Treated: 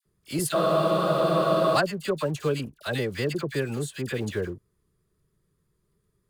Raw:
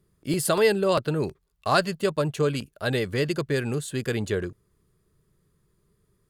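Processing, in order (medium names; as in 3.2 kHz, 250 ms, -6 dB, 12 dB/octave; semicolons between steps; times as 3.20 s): vibrato 7.6 Hz 29 cents; in parallel at -11 dB: companded quantiser 4-bit; on the sum: phase dispersion lows, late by 56 ms, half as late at 1.3 kHz; spectral freeze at 0.56 s, 1.20 s; trim -4.5 dB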